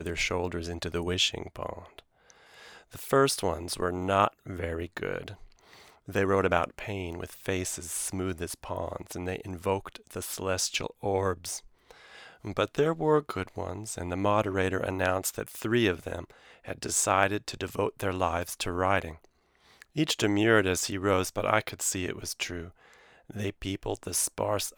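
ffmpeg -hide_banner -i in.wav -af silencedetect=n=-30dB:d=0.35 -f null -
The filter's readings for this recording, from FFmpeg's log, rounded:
silence_start: 1.99
silence_end: 2.99 | silence_duration: 1.01
silence_start: 5.28
silence_end: 6.10 | silence_duration: 0.82
silence_start: 11.57
silence_end: 12.47 | silence_duration: 0.90
silence_start: 16.19
silence_end: 16.68 | silence_duration: 0.49
silence_start: 19.08
silence_end: 19.82 | silence_duration: 0.73
silence_start: 22.61
silence_end: 23.31 | silence_duration: 0.70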